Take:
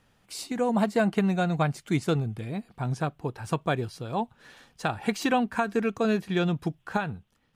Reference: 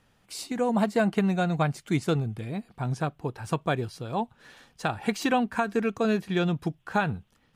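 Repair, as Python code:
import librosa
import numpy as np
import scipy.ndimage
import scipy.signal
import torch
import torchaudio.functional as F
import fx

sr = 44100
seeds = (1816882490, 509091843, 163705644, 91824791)

y = fx.fix_level(x, sr, at_s=6.97, step_db=4.5)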